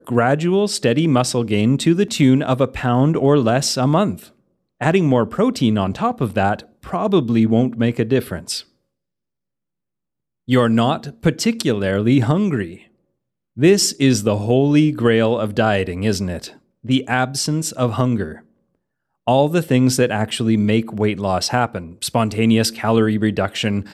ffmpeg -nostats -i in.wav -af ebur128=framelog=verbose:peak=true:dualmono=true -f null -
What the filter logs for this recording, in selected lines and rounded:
Integrated loudness:
  I:         -14.8 LUFS
  Threshold: -25.2 LUFS
Loudness range:
  LRA:         4.9 LU
  Threshold: -35.7 LUFS
  LRA low:   -18.6 LUFS
  LRA high:  -13.7 LUFS
True peak:
  Peak:       -2.7 dBFS